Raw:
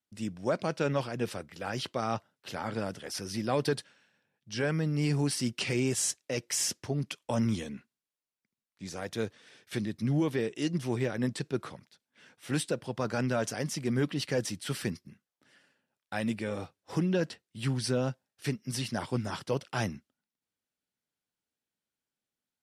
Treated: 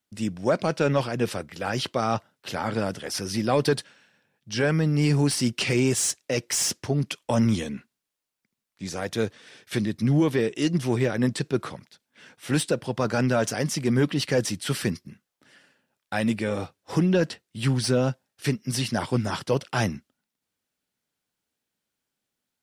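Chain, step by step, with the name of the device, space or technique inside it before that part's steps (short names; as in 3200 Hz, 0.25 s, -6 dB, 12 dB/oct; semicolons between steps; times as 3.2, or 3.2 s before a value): saturation between pre-emphasis and de-emphasis (high shelf 2400 Hz +12 dB; soft clip -15 dBFS, distortion -19 dB; high shelf 2400 Hz -12 dB); gain +7.5 dB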